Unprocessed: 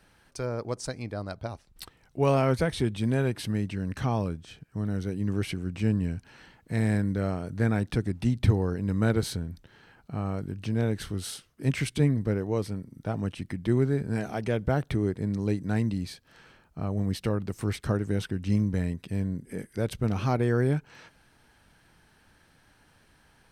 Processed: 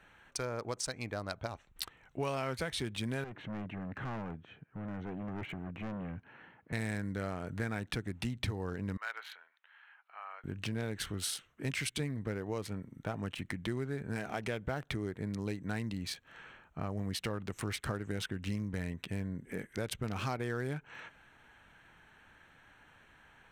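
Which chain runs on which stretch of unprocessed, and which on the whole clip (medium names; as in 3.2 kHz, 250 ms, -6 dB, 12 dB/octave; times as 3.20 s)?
3.24–6.73 s: high-pass 110 Hz + hard clipper -32.5 dBFS + tape spacing loss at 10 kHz 34 dB
8.97–10.44 s: Bessel high-pass 1.4 kHz, order 4 + distance through air 330 m
whole clip: local Wiener filter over 9 samples; tilt shelf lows -6.5 dB, about 900 Hz; compression 4:1, threshold -36 dBFS; trim +2 dB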